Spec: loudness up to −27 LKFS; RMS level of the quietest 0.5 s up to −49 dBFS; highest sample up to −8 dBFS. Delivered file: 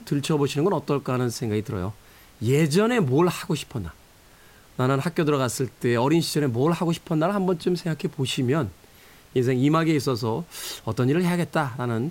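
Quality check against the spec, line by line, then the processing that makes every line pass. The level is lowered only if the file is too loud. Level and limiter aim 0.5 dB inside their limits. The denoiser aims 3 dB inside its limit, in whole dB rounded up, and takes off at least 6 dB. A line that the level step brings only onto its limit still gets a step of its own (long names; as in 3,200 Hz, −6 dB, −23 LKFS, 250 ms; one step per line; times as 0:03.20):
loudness −24.0 LKFS: out of spec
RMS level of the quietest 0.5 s −52 dBFS: in spec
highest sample −9.0 dBFS: in spec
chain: level −3.5 dB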